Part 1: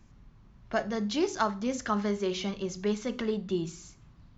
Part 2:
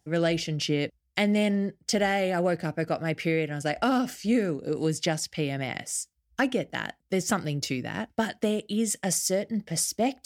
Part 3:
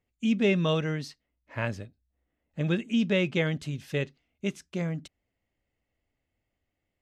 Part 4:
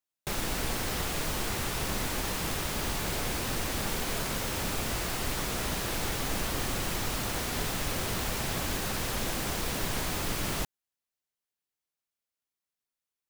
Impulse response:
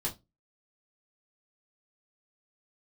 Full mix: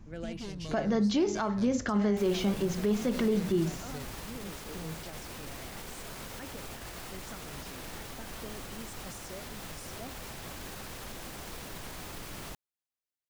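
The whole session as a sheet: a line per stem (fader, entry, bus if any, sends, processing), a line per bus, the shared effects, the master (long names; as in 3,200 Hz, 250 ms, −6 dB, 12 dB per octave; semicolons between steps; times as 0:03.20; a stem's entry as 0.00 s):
+3.0 dB, 0.00 s, no bus, no send, no processing
−16.0 dB, 0.00 s, bus A, no send, no processing
−15.0 dB, 0.00 s, no bus, no send, wavefolder on the positive side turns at −22.5 dBFS; flat-topped bell 6,500 Hz +13.5 dB; downward compressor 2.5 to 1, threshold −28 dBFS, peak gain reduction 5.5 dB
−7.0 dB, 1.90 s, bus A, no send, no processing
bus A: 0.0 dB, tilt shelving filter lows −4 dB, about 710 Hz; brickwall limiter −32 dBFS, peak gain reduction 9.5 dB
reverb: not used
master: tilt shelving filter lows +4 dB; brickwall limiter −19.5 dBFS, peak gain reduction 10.5 dB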